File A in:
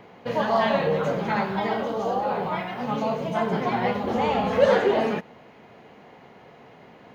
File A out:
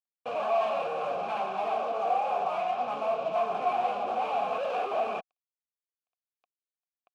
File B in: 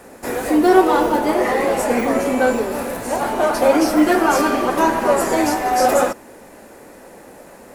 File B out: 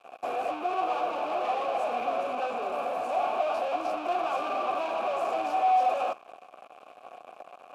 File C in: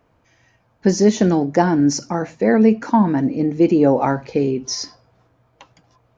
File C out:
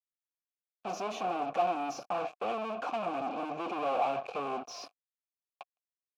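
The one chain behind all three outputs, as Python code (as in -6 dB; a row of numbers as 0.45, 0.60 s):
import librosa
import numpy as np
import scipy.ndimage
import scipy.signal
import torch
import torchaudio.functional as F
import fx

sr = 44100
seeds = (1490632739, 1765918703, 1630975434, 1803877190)

y = fx.fuzz(x, sr, gain_db=34.0, gate_db=-38.0)
y = fx.vowel_filter(y, sr, vowel='a')
y = y * librosa.db_to_amplitude(-5.0)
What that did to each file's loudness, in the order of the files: -5.5, -12.0, -17.0 LU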